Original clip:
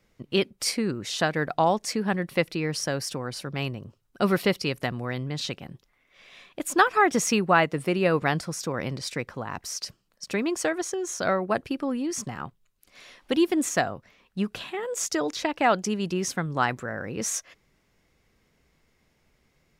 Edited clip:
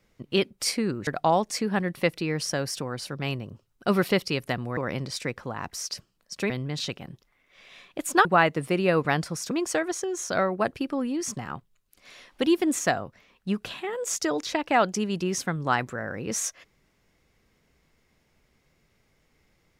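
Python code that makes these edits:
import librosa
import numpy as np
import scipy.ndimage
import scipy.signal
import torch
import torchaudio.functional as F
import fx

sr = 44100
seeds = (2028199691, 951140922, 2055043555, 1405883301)

y = fx.edit(x, sr, fx.cut(start_s=1.07, length_s=0.34),
    fx.cut(start_s=6.86, length_s=0.56),
    fx.move(start_s=8.68, length_s=1.73, to_s=5.11), tone=tone)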